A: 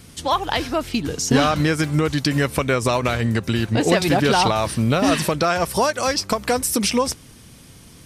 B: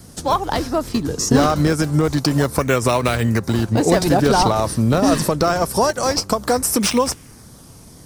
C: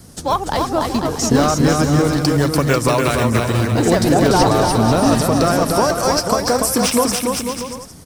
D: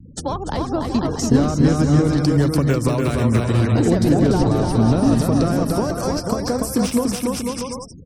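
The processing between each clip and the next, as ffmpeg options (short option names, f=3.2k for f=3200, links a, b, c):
-filter_complex "[0:a]equalizer=f=4.8k:w=1.5:g=2.5,acrossover=split=350|1700|4200[a][b][c][d];[c]acrusher=samples=33:mix=1:aa=0.000001:lfo=1:lforange=52.8:lforate=0.25[e];[a][b][e][d]amix=inputs=4:normalize=0,volume=2.5dB"
-af "aecho=1:1:290|493|635.1|734.6|804.2:0.631|0.398|0.251|0.158|0.1"
-filter_complex "[0:a]afftfilt=real='re*gte(hypot(re,im),0.0178)':imag='im*gte(hypot(re,im),0.0178)':win_size=1024:overlap=0.75,acrossover=split=390[a][b];[b]acompressor=threshold=-26dB:ratio=10[c];[a][c]amix=inputs=2:normalize=0,volume=1dB"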